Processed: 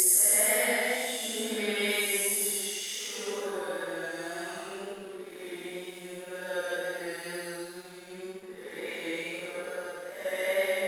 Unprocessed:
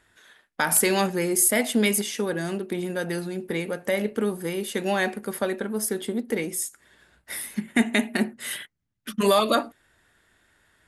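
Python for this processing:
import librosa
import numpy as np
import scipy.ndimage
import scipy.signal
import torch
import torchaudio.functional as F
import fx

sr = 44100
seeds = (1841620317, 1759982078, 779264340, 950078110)

y = scipy.signal.sosfilt(scipy.signal.butter(2, 470.0, 'highpass', fs=sr, output='sos'), x)
y = fx.paulstretch(y, sr, seeds[0], factor=4.2, window_s=0.25, from_s=1.4)
y = np.sign(y) * np.maximum(np.abs(y) - 10.0 ** (-49.0 / 20.0), 0.0)
y = fx.wow_flutter(y, sr, seeds[1], rate_hz=2.1, depth_cents=20.0)
y = y * librosa.db_to_amplitude(-2.5)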